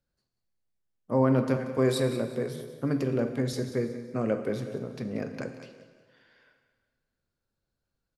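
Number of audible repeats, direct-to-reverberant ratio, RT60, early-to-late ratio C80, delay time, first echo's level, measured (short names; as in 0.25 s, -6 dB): 3, 6.5 dB, 1.6 s, 8.5 dB, 0.183 s, -13.5 dB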